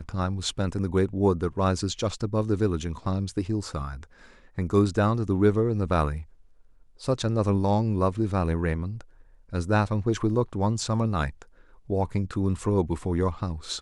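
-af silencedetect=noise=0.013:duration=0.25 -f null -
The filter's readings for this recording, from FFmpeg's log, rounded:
silence_start: 4.04
silence_end: 4.58 | silence_duration: 0.54
silence_start: 6.23
silence_end: 7.01 | silence_duration: 0.78
silence_start: 9.01
silence_end: 9.53 | silence_duration: 0.52
silence_start: 11.42
silence_end: 11.89 | silence_duration: 0.47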